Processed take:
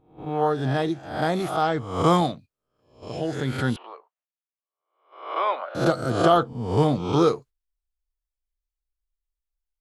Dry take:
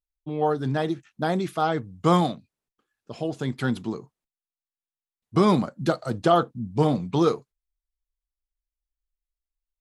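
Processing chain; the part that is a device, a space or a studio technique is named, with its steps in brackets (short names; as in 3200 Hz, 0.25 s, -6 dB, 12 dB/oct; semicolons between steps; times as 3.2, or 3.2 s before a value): spectral swells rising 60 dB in 0.60 s; gate -42 dBFS, range -7 dB; 3.76–5.75 elliptic band-pass 580–3000 Hz, stop band 60 dB; low shelf boost with a cut just above (low shelf 100 Hz +8 dB; bell 200 Hz -4.5 dB 0.67 oct)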